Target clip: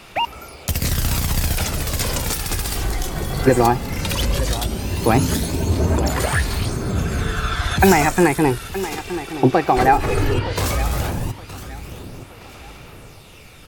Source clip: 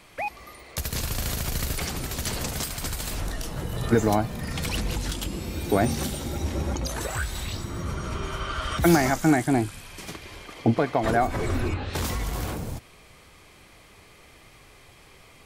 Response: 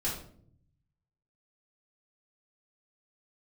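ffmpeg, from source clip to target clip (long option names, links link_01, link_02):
-af "aecho=1:1:1038|2076|3114:0.188|0.0603|0.0193,aphaser=in_gain=1:out_gain=1:delay=3:decay=0.33:speed=0.14:type=sinusoidal,asetrate=49833,aresample=44100,volume=6.5dB"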